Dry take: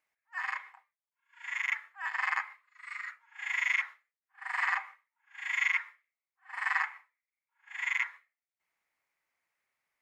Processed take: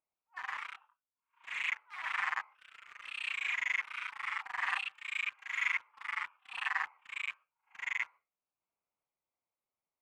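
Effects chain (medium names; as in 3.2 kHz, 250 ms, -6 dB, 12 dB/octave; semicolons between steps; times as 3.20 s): local Wiener filter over 25 samples; 4.75–5.65 s: bass shelf 490 Hz -9.5 dB; ever faster or slower copies 152 ms, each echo +2 st, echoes 2; trim -3.5 dB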